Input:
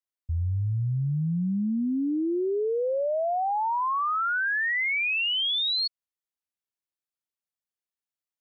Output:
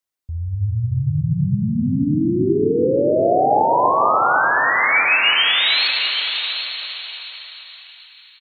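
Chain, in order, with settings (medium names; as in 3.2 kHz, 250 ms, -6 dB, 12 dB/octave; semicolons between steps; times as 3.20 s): reverb removal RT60 1.5 s; peak limiter -31.5 dBFS, peak gain reduction 8.5 dB; dynamic bell 850 Hz, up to +3 dB, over -50 dBFS, Q 0.92; level rider gain up to 5 dB; 1.21–1.99 s: bass shelf 180 Hz -5.5 dB; 4.92–5.42 s: comb 3.5 ms, depth 87%; delay 776 ms -9 dB; reverberation RT60 5.0 s, pre-delay 58 ms, DRR 0 dB; trim +8 dB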